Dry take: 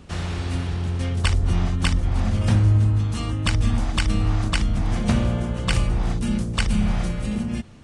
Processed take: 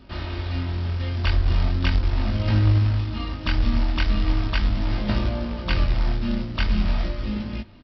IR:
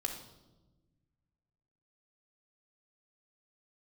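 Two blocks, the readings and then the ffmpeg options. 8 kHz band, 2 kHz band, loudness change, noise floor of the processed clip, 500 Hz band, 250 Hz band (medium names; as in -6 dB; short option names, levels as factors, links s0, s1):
under -20 dB, -0.5 dB, -1.5 dB, -33 dBFS, -1.0 dB, -2.5 dB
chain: -af "aecho=1:1:3.2:0.49,aresample=11025,acrusher=bits=4:mode=log:mix=0:aa=0.000001,aresample=44100,flanger=delay=19:depth=6.4:speed=0.4"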